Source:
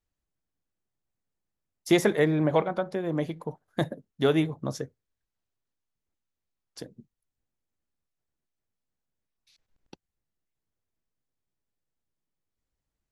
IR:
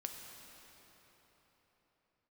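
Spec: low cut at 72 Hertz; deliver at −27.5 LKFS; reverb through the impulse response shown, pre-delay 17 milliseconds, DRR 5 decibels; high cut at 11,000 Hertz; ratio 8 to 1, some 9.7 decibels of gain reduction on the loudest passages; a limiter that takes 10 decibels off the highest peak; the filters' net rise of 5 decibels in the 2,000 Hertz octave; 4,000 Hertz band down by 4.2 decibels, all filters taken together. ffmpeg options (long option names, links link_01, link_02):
-filter_complex "[0:a]highpass=72,lowpass=11000,equalizer=frequency=2000:width_type=o:gain=7.5,equalizer=frequency=4000:width_type=o:gain=-8,acompressor=threshold=-26dB:ratio=8,alimiter=limit=-22dB:level=0:latency=1,asplit=2[link_01][link_02];[1:a]atrim=start_sample=2205,adelay=17[link_03];[link_02][link_03]afir=irnorm=-1:irlink=0,volume=-3dB[link_04];[link_01][link_04]amix=inputs=2:normalize=0,volume=7.5dB"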